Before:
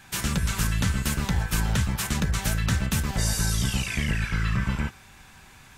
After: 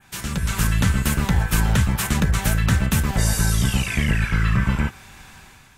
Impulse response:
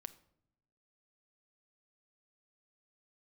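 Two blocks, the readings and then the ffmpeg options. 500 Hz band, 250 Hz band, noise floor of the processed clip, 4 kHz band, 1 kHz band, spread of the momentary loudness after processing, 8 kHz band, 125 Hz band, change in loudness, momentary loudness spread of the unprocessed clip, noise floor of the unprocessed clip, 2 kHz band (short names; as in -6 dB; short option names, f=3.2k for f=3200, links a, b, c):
+5.5 dB, +5.5 dB, -49 dBFS, +2.0 dB, +5.5 dB, 4 LU, +3.0 dB, +6.0 dB, +5.0 dB, 2 LU, -51 dBFS, +5.0 dB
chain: -af "dynaudnorm=f=130:g=7:m=9dB,adynamicequalizer=threshold=0.0126:dfrequency=5000:dqfactor=0.96:tfrequency=5000:tqfactor=0.96:attack=5:release=100:ratio=0.375:range=3:mode=cutabove:tftype=bell,volume=-2.5dB"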